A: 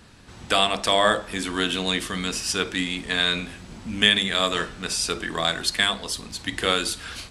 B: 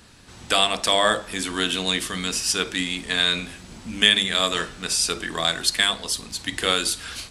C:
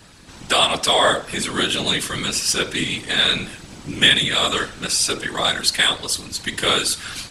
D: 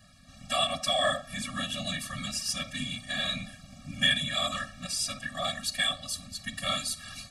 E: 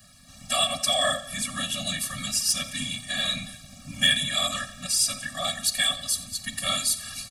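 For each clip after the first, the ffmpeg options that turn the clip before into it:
-af "highshelf=f=3.7k:g=6.5,bandreject=f=50:t=h:w=6,bandreject=f=100:t=h:w=6,bandreject=f=150:t=h:w=6,bandreject=f=200:t=h:w=6,volume=-1dB"
-filter_complex "[0:a]afftfilt=real='hypot(re,im)*cos(2*PI*random(0))':imag='hypot(re,im)*sin(2*PI*random(1))':win_size=512:overlap=0.75,asplit=2[a][b];[b]asoftclip=type=tanh:threshold=-20.5dB,volume=-11dB[c];[a][c]amix=inputs=2:normalize=0,volume=7.5dB"
-af "afftfilt=real='re*eq(mod(floor(b*sr/1024/270),2),0)':imag='im*eq(mod(floor(b*sr/1024/270),2),0)':win_size=1024:overlap=0.75,volume=-8.5dB"
-filter_complex "[0:a]aemphasis=mode=production:type=50kf,acrossover=split=100[a][b];[a]acrusher=samples=27:mix=1:aa=0.000001:lfo=1:lforange=43.2:lforate=0.79[c];[c][b]amix=inputs=2:normalize=0,aecho=1:1:88|176|264|352|440:0.133|0.076|0.0433|0.0247|0.0141,volume=1dB"

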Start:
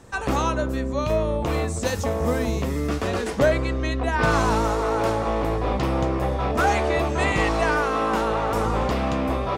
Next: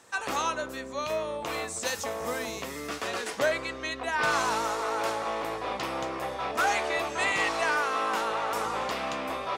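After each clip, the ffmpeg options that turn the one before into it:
-af "highpass=f=1.3k:p=1"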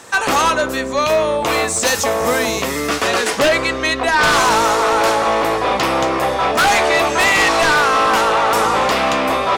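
-af "aeval=exprs='0.237*sin(PI/2*3.16*val(0)/0.237)':c=same,volume=3dB"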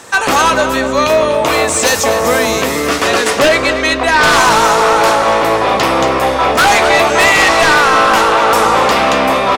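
-filter_complex "[0:a]asplit=2[a][b];[b]adelay=243,lowpass=f=4.4k:p=1,volume=-8.5dB,asplit=2[c][d];[d]adelay=243,lowpass=f=4.4k:p=1,volume=0.51,asplit=2[e][f];[f]adelay=243,lowpass=f=4.4k:p=1,volume=0.51,asplit=2[g][h];[h]adelay=243,lowpass=f=4.4k:p=1,volume=0.51,asplit=2[i][j];[j]adelay=243,lowpass=f=4.4k:p=1,volume=0.51,asplit=2[k][l];[l]adelay=243,lowpass=f=4.4k:p=1,volume=0.51[m];[a][c][e][g][i][k][m]amix=inputs=7:normalize=0,volume=4dB"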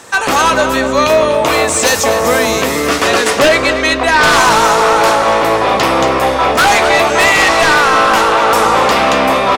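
-af "dynaudnorm=f=330:g=3:m=11.5dB,volume=-1dB"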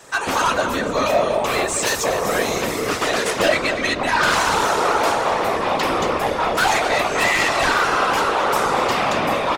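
-af "afftfilt=real='hypot(re,im)*cos(2*PI*random(0))':imag='hypot(re,im)*sin(2*PI*random(1))':win_size=512:overlap=0.75,volume=-2.5dB"

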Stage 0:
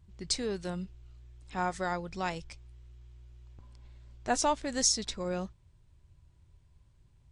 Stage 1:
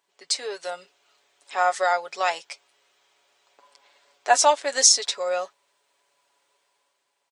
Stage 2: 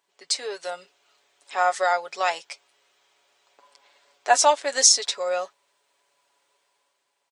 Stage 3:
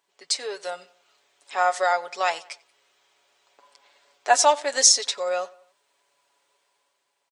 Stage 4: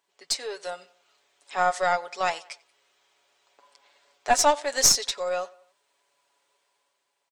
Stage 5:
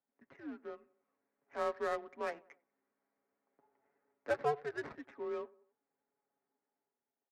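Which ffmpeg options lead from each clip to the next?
-af "highpass=f=500:w=0.5412,highpass=f=500:w=1.3066,aecho=1:1:7.1:0.63,dynaudnorm=f=100:g=13:m=6dB,volume=4dB"
-af anull
-filter_complex "[0:a]asplit=2[a][b];[b]adelay=92,lowpass=f=3.6k:p=1,volume=-22dB,asplit=2[c][d];[d]adelay=92,lowpass=f=3.6k:p=1,volume=0.47,asplit=2[e][f];[f]adelay=92,lowpass=f=3.6k:p=1,volume=0.47[g];[a][c][e][g]amix=inputs=4:normalize=0"
-af "aeval=exprs='(tanh(2.24*val(0)+0.5)-tanh(0.5))/2.24':c=same"
-af "highpass=f=310:t=q:w=0.5412,highpass=f=310:t=q:w=1.307,lowpass=f=2.3k:t=q:w=0.5176,lowpass=f=2.3k:t=q:w=0.7071,lowpass=f=2.3k:t=q:w=1.932,afreqshift=-150,adynamicsmooth=sensitivity=5:basefreq=1.4k,equalizer=f=830:t=o:w=2.1:g=-5,volume=-8.5dB"

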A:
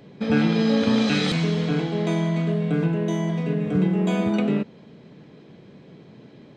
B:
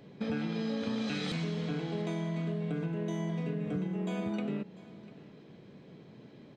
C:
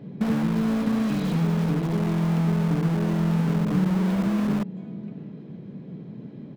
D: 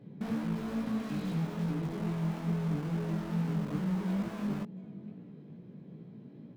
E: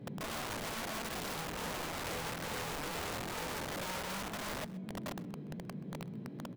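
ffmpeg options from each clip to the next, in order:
-af "acompressor=threshold=-25dB:ratio=6,aecho=1:1:696:0.106,volume=-6dB"
-filter_complex "[0:a]equalizer=f=180:w=0.79:g=13,asplit=2[a][b];[b]aeval=exprs='(mod(15.8*val(0)+1,2)-1)/15.8':c=same,volume=-6dB[c];[a][c]amix=inputs=2:normalize=0,highshelf=f=3k:g=-10"
-af "flanger=delay=16.5:depth=4.6:speed=2.3,volume=-7dB"
-filter_complex "[0:a]alimiter=level_in=8.5dB:limit=-24dB:level=0:latency=1:release=472,volume=-8.5dB,aeval=exprs='(mod(100*val(0)+1,2)-1)/100':c=same,asplit=2[a][b];[b]adelay=128.3,volume=-18dB,highshelf=f=4k:g=-2.89[c];[a][c]amix=inputs=2:normalize=0,volume=5dB"

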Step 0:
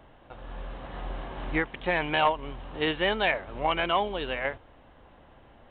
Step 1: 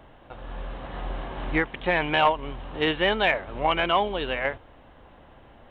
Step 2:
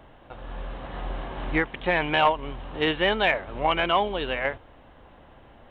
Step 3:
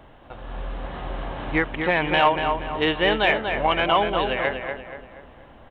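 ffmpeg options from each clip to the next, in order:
-af "acontrast=34,volume=-2dB"
-af anull
-filter_complex "[0:a]asplit=2[a][b];[b]adelay=239,lowpass=f=3.1k:p=1,volume=-5.5dB,asplit=2[c][d];[d]adelay=239,lowpass=f=3.1k:p=1,volume=0.44,asplit=2[e][f];[f]adelay=239,lowpass=f=3.1k:p=1,volume=0.44,asplit=2[g][h];[h]adelay=239,lowpass=f=3.1k:p=1,volume=0.44,asplit=2[i][j];[j]adelay=239,lowpass=f=3.1k:p=1,volume=0.44[k];[a][c][e][g][i][k]amix=inputs=6:normalize=0,volume=2dB"

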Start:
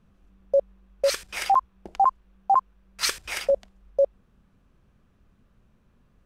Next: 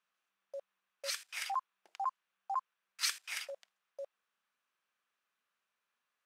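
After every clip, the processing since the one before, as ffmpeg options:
-af "highpass=1.4k,volume=-8dB"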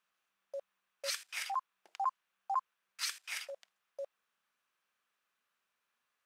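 -af "alimiter=level_in=3dB:limit=-24dB:level=0:latency=1:release=388,volume=-3dB,volume=2dB"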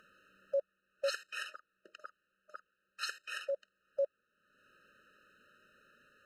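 -af "acompressor=mode=upward:threshold=-54dB:ratio=2.5,lowpass=f=1.1k:p=1,afftfilt=real='re*eq(mod(floor(b*sr/1024/620),2),0)':imag='im*eq(mod(floor(b*sr/1024/620),2),0)':win_size=1024:overlap=0.75,volume=11dB"

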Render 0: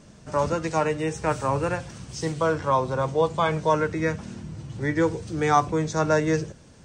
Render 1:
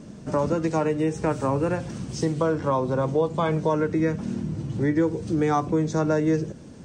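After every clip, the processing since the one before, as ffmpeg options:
-af "equalizer=f=260:w=0.62:g=11.5,acompressor=threshold=-22dB:ratio=2.5"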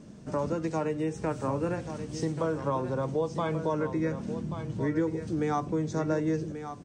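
-af "aecho=1:1:1134:0.316,volume=-6.5dB"

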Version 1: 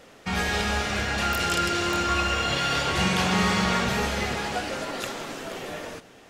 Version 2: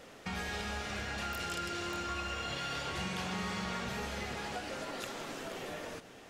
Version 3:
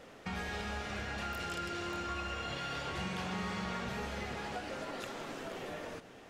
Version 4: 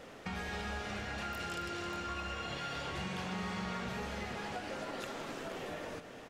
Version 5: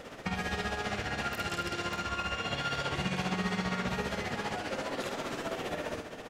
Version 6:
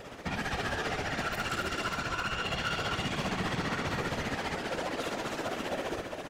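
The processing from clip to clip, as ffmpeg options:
-af "acompressor=threshold=-38dB:ratio=2.5,volume=-2.5dB"
-af "highshelf=f=3.6k:g=-6.5"
-af "acompressor=threshold=-45dB:ratio=1.5,aecho=1:1:266:0.237,volume=2.5dB"
-filter_complex "[0:a]asplit=2[a][b];[b]adelay=50,volume=-5.5dB[c];[a][c]amix=inputs=2:normalize=0,tremolo=f=15:d=0.57,volume=7.5dB"
-af "aecho=1:1:263:0.531,afftfilt=real='hypot(re,im)*cos(2*PI*random(0))':imag='hypot(re,im)*sin(2*PI*random(1))':win_size=512:overlap=0.75,volume=33dB,asoftclip=hard,volume=-33dB,volume=6.5dB"

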